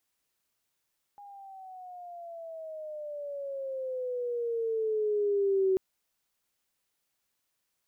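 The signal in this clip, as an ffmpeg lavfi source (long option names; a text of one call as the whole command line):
ffmpeg -f lavfi -i "aevalsrc='pow(10,(-22+23.5*(t/4.59-1))/20)*sin(2*PI*819*4.59/(-13.5*log(2)/12)*(exp(-13.5*log(2)/12*t/4.59)-1))':duration=4.59:sample_rate=44100" out.wav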